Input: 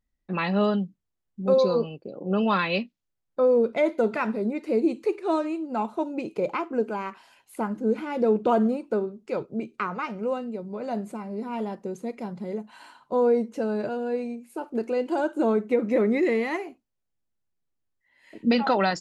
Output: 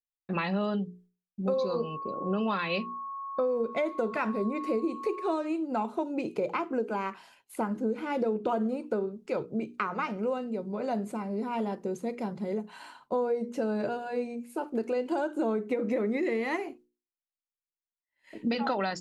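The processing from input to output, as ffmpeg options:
-filter_complex "[0:a]asettb=1/sr,asplit=3[a][b][c];[a]atrim=end=1.534[d];[b]atrim=start=1.53:end=5.33,asetpts=PTS-STARTPTS,afade=t=in:d=0.004:c=qsin,afade=t=out:st=3.796:d=0.004:c=qsin,aeval=exprs='val(0)+0.0158*sin(2*PI*1100*n/s)':c=same[e];[c]atrim=start=5.326[f];[d][e]acrossfade=d=0.004:c1=hsin:c2=qsin[g];[g][f]acrossfade=d=0.004:c1=qsin:c2=hsin,agate=range=-33dB:threshold=-52dB:ratio=3:detection=peak,bandreject=f=60:t=h:w=6,bandreject=f=120:t=h:w=6,bandreject=f=180:t=h:w=6,bandreject=f=240:t=h:w=6,bandreject=f=300:t=h:w=6,bandreject=f=360:t=h:w=6,bandreject=f=420:t=h:w=6,bandreject=f=480:t=h:w=6,acompressor=threshold=-27dB:ratio=6,volume=1dB"

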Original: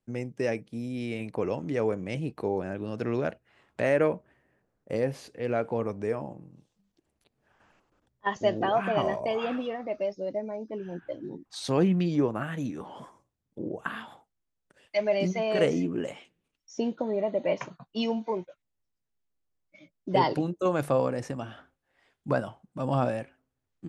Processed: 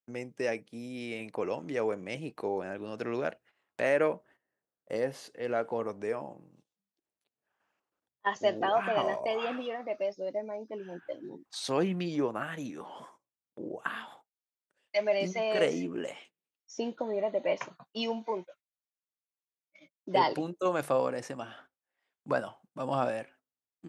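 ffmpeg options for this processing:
-filter_complex "[0:a]asettb=1/sr,asplit=3[a][b][c];[a]atrim=end=4.134[d];[b]atrim=start=4.13:end=6,asetpts=PTS-STARTPTS,afade=t=in:d=0.004:c=qsin,afade=t=out:st=1.866:d=0.004:c=qsin,bandreject=f=2.4k:w=8.3[e];[c]atrim=start=5.996[f];[d][e]acrossfade=d=0.004:c1=hsin:c2=qsin[g];[g][f]acrossfade=d=0.004:c1=qsin:c2=hsin,agate=range=-14dB:threshold=-54dB:ratio=16:detection=peak,highpass=f=470:p=1"

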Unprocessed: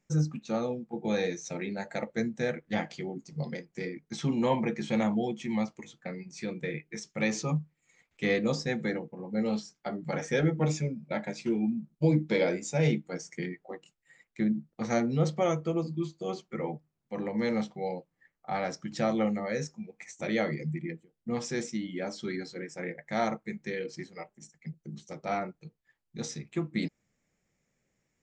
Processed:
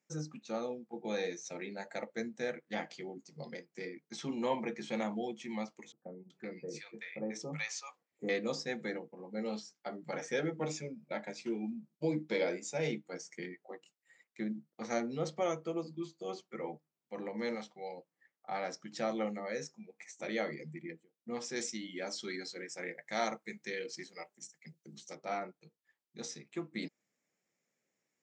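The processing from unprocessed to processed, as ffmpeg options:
-filter_complex "[0:a]asettb=1/sr,asplit=3[a][b][c];[a]atrim=end=5.924[d];[b]atrim=start=5.92:end=8.29,asetpts=PTS-STARTPTS,afade=t=in:d=0.004:c=qsin,afade=t=out:st=2.366:d=0.004:c=qsin,acrossover=split=880[e][f];[f]adelay=380[g];[e][g]amix=inputs=2:normalize=0,atrim=end_sample=104517[h];[c]atrim=start=8.286[i];[d][h]acrossfade=d=0.004:c1=hsin:c2=qsin[j];[j][i]acrossfade=d=0.004:c1=qsin:c2=hsin,asettb=1/sr,asplit=3[k][l][m];[k]atrim=end=17.554[n];[l]atrim=start=17.55:end=17.98,asetpts=PTS-STARTPTS,afade=t=in:d=0.004:c=qsin,afade=t=out:st=0.426:d=0.004:c=qsin,equalizer=f=220:t=o:w=3:g=-6.5[o];[m]atrim=start=17.976[p];[n][o]acrossfade=d=0.004:c1=hsin:c2=qsin[q];[q][p]acrossfade=d=0.004:c1=qsin:c2=hsin,asettb=1/sr,asplit=3[r][s][t];[r]atrim=end=21.564[u];[s]atrim=start=21.56:end=25.15,asetpts=PTS-STARTPTS,afade=t=in:d=0.004:c=qsin,afade=t=out:st=3.586:d=0.004:c=qsin,highshelf=f=2.4k:g=8.5[v];[t]atrim=start=25.146[w];[u][v]acrossfade=d=0.004:c1=hsin:c2=qsin[x];[x][w]acrossfade=d=0.004:c1=qsin:c2=hsin,highpass=260,equalizer=f=5.1k:w=1.5:g=2,volume=-5.5dB"

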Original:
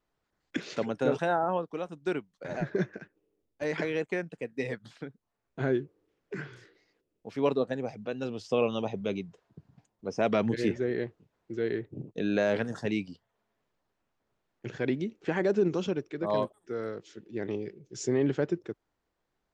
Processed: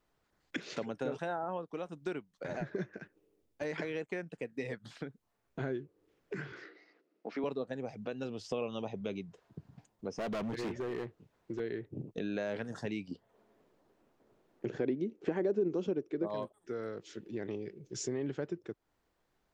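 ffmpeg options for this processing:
-filter_complex "[0:a]asettb=1/sr,asplit=3[a][b][c];[a]atrim=end=6.524[d];[b]atrim=start=6.52:end=7.44,asetpts=PTS-STARTPTS,afade=t=in:d=0.004:c=qsin,afade=t=out:st=0.916:d=0.004:c=qsin,highpass=f=210:w=0.5412,highpass=f=210:w=1.3066,equalizer=f=310:t=q:w=4:g=4,equalizer=f=700:t=q:w=4:g=5,equalizer=f=1.3k:t=q:w=4:g=7,equalizer=f=2k:t=q:w=4:g=5,equalizer=f=3.3k:t=q:w=4:g=-4,lowpass=f=5.2k:w=0.5412,lowpass=f=5.2k:w=1.3066[e];[c]atrim=start=7.436[f];[d][e]acrossfade=d=0.004:c1=hsin:c2=qsin[g];[g][f]acrossfade=d=0.004:c1=qsin:c2=hsin,asettb=1/sr,asplit=3[h][i][j];[h]atrim=end=10.124[k];[i]atrim=start=10.12:end=11.6,asetpts=PTS-STARTPTS,afade=t=in:d=0.004:c=qsin,afade=t=out:st=1.476:d=0.004:c=qsin,asoftclip=type=hard:threshold=-29dB[l];[j]atrim=start=11.596[m];[k][l]acrossfade=d=0.004:c1=hsin:c2=qsin[n];[n][m]acrossfade=d=0.004:c1=qsin:c2=hsin,asettb=1/sr,asplit=3[o][p][q];[o]atrim=end=13.114[r];[p]atrim=start=13.11:end=16.28,asetpts=PTS-STARTPTS,afade=t=in:d=0.004:c=qsin,afade=t=out:st=3.166:d=0.004:c=qsin,equalizer=f=360:w=0.58:g=12.5[s];[q]atrim=start=16.276[t];[r][s]acrossfade=d=0.004:c1=hsin:c2=qsin[u];[u][t]acrossfade=d=0.004:c1=qsin:c2=hsin,acompressor=threshold=-43dB:ratio=2.5,volume=3.5dB"

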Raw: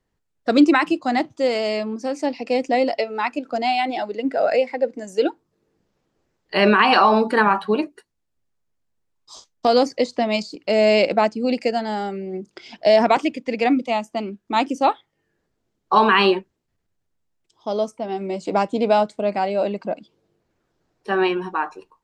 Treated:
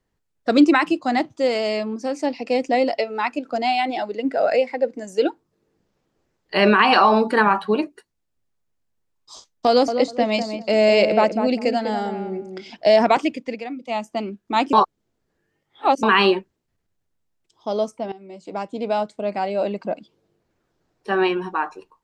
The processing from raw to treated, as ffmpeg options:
-filter_complex "[0:a]asettb=1/sr,asplit=3[a][b][c];[a]atrim=end=9.684[d];[b]atrim=start=9.68:end=12.7,asetpts=PTS-STARTPTS,afade=t=in:d=0.004:c=qsin,afade=t=out:st=3.016:d=0.004:c=qsin,asplit=2[e][f];[f]adelay=198,lowpass=f=1.1k:p=1,volume=-6dB,asplit=2[g][h];[h]adelay=198,lowpass=f=1.1k:p=1,volume=0.23,asplit=2[i][j];[j]adelay=198,lowpass=f=1.1k:p=1,volume=0.23[k];[e][g][i][k]amix=inputs=4:normalize=0,atrim=end_sample=133182[l];[c]atrim=start=12.696[m];[d][l]acrossfade=d=0.004:c1=hsin:c2=qsin[n];[n][m]acrossfade=d=0.004:c1=qsin:c2=hsin,asplit=6[o][p][q][r][s][t];[o]atrim=end=13.64,asetpts=PTS-STARTPTS,afade=t=out:st=13.3:d=0.34:c=qsin:silence=0.211349[u];[p]atrim=start=13.64:end=13.8,asetpts=PTS-STARTPTS,volume=-13.5dB[v];[q]atrim=start=13.8:end=14.732,asetpts=PTS-STARTPTS,afade=t=in:d=0.34:c=qsin:silence=0.211349[w];[r]atrim=start=14.728:end=16.032,asetpts=PTS-STARTPTS,areverse[x];[s]atrim=start=16.028:end=18.12,asetpts=PTS-STARTPTS,afade=t=out:st=2.088:d=0.004:c=hsin:silence=0.133352[y];[t]atrim=start=18.12,asetpts=PTS-STARTPTS,afade=t=in:d=1.75:silence=0.133352[z];[u][v][w]concat=n=3:v=0:a=1[aa];[aa][x]acrossfade=d=0.004:c1=hsin:c2=hsin[ab];[y][z]concat=n=2:v=0:a=1[ac];[ab][ac]acrossfade=d=0.004:c1=hsin:c2=hsin"

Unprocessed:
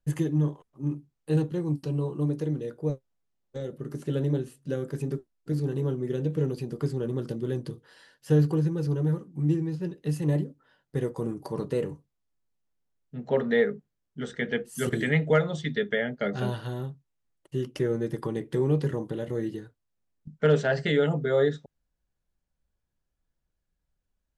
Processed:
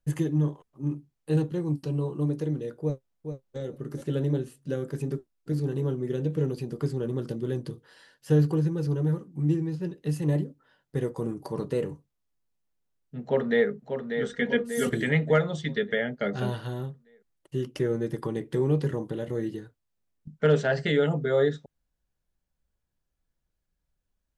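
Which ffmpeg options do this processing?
-filter_complex "[0:a]asplit=2[a][b];[b]afade=t=in:st=2.82:d=0.01,afade=t=out:st=3.59:d=0.01,aecho=0:1:420|840|1260:0.421697|0.0843393|0.0168679[c];[a][c]amix=inputs=2:normalize=0,asplit=2[d][e];[e]afade=t=in:st=13.23:d=0.01,afade=t=out:st=13.68:d=0.01,aecho=0:1:590|1180|1770|2360|2950|3540:0.446684|0.223342|0.111671|0.0558354|0.0279177|0.0139589[f];[d][f]amix=inputs=2:normalize=0,asettb=1/sr,asplit=3[g][h][i];[g]atrim=end=14.294[j];[h]atrim=start=14.29:end=14.91,asetpts=PTS-STARTPTS,afade=t=in:d=0.004:c=qsin,afade=t=out:st=0.616:d=0.004:c=qsin,aecho=1:1:4.2:0.65,atrim=end_sample=27342[k];[i]atrim=start=14.906[l];[j][k]acrossfade=d=0.004:c1=hsin:c2=qsin[m];[m][l]acrossfade=d=0.004:c1=qsin:c2=hsin"

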